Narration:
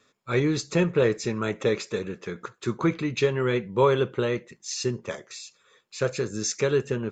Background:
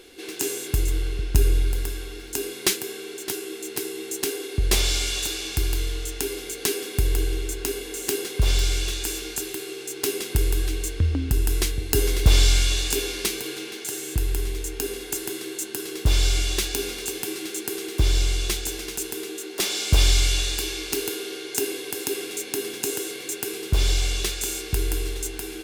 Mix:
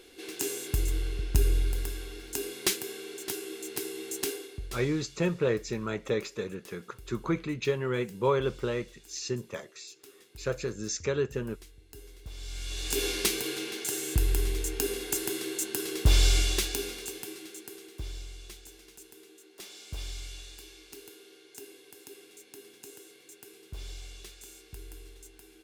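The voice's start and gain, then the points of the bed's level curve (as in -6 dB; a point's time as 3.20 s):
4.45 s, -5.5 dB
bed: 4.30 s -5.5 dB
4.94 s -28 dB
12.34 s -28 dB
13.05 s -1.5 dB
16.38 s -1.5 dB
18.28 s -21 dB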